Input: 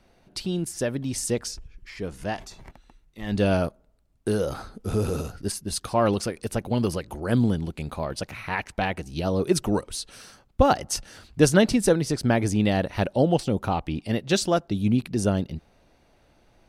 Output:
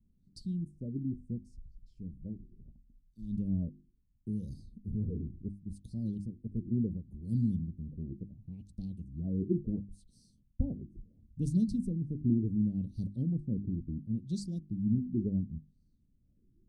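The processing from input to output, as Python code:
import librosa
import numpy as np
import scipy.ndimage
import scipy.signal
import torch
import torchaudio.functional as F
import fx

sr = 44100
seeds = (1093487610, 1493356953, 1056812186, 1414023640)

y = scipy.signal.sosfilt(scipy.signal.cheby1(3, 1.0, [220.0, 8900.0], 'bandstop', fs=sr, output='sos'), x)
y = fx.hum_notches(y, sr, base_hz=50, count=7)
y = fx.filter_lfo_lowpass(y, sr, shape='sine', hz=0.71, low_hz=340.0, high_hz=4600.0, q=6.4)
y = y * 10.0 ** (-5.5 / 20.0)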